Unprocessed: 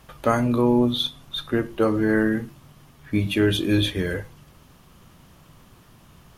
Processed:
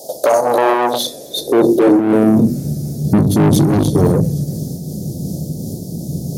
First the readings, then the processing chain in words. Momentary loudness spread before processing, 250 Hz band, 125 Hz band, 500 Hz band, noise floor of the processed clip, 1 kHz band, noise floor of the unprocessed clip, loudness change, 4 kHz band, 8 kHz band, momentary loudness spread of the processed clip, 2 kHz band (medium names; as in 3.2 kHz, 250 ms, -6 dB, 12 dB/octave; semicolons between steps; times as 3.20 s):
9 LU, +9.5 dB, +12.0 dB, +10.0 dB, -32 dBFS, +12.0 dB, -53 dBFS, +7.5 dB, +2.0 dB, +16.0 dB, 13 LU, +1.5 dB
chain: octave divider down 1 oct, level +1 dB; inverse Chebyshev band-stop 1.1–2.7 kHz, stop band 50 dB; hum notches 60/120/180/240 Hz; in parallel at +1 dB: compression, threshold -30 dBFS, peak gain reduction 15.5 dB; on the sum: saturation -24 dBFS, distortion -6 dB; high-pass sweep 660 Hz -> 150 Hz, 0.94–2.75 s; on a send: feedback echo behind a high-pass 262 ms, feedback 57%, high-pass 2.7 kHz, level -23.5 dB; on the sum: loudness maximiser +21 dB; random flutter of the level, depth 60%